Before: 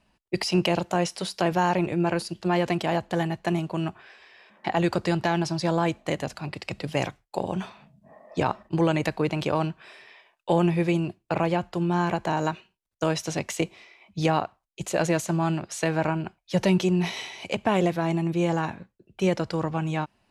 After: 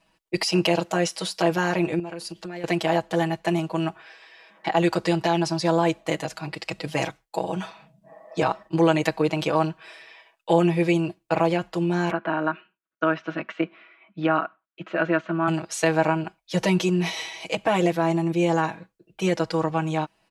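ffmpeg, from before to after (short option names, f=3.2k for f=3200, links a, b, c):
-filter_complex "[0:a]asettb=1/sr,asplit=3[a][b][c];[a]atrim=end=1.994[d];[b]atrim=start=1.99:end=2.64,asetpts=PTS-STARTPTS,afade=t=in:d=0.004:c=qsin,afade=t=out:st=0.646:d=0.004:c=qsin,acompressor=threshold=-33dB:ratio=5:attack=3.2:release=140:knee=1:detection=peak[e];[c]atrim=start=2.636[f];[d][e]acrossfade=d=0.004:c1=hsin:c2=qsin[g];[g][f]acrossfade=d=0.004:c1=qsin:c2=hsin,asettb=1/sr,asplit=3[h][i][j];[h]atrim=end=12.114[k];[i]atrim=start=12.11:end=15.48,asetpts=PTS-STARTPTS,afade=t=in:d=0.004:c=qsin,afade=t=out:st=3.366:d=0.004:c=qsin,highpass=220,equalizer=f=240:t=q:w=4:g=9,equalizer=f=470:t=q:w=4:g=-8,equalizer=f=850:t=q:w=4:g=-9,equalizer=f=1.4k:t=q:w=4:g=9,equalizer=f=2.1k:t=q:w=4:g=-4,lowpass=f=2.6k:w=0.5412,lowpass=f=2.6k:w=1.3066[l];[j]atrim=start=15.476[m];[k][l]acrossfade=d=0.004:c1=hsin:c2=qsin[n];[n][m]acrossfade=d=0.004:c1=qsin:c2=hsin,bass=f=250:g=-7,treble=f=4k:g=1,aecho=1:1:6.2:0.98"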